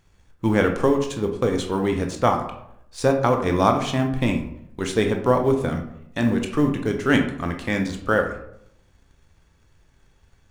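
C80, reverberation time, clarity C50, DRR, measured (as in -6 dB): 11.5 dB, 0.75 s, 7.5 dB, 3.5 dB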